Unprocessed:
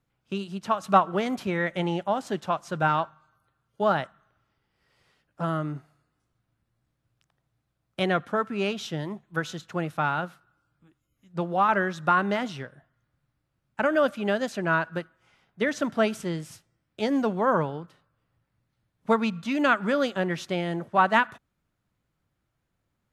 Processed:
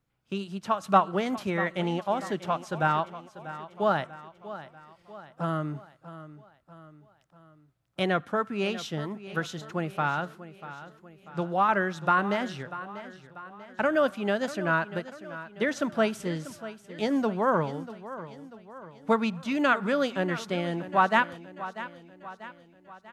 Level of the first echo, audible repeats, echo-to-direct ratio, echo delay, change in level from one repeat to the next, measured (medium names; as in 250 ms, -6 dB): -14.5 dB, 4, -13.5 dB, 641 ms, -6.0 dB